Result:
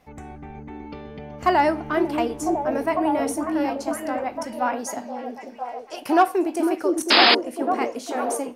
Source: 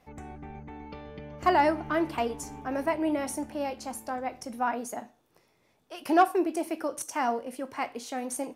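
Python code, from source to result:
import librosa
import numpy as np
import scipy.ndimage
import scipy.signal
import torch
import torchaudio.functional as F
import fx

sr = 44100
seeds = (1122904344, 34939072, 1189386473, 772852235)

p1 = fx.peak_eq(x, sr, hz=5400.0, db=9.5, octaves=0.7, at=(4.79, 5.96))
p2 = fx.spec_paint(p1, sr, seeds[0], shape='noise', start_s=7.1, length_s=0.25, low_hz=200.0, high_hz=5200.0, level_db=-19.0)
p3 = p2 + fx.echo_stepped(p2, sr, ms=501, hz=330.0, octaves=0.7, feedback_pct=70, wet_db=-0.5, dry=0)
y = p3 * 10.0 ** (4.0 / 20.0)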